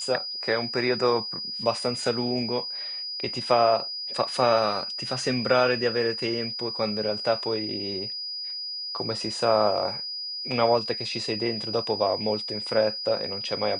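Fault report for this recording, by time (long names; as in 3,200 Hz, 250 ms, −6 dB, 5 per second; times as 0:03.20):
whistle 4,900 Hz −31 dBFS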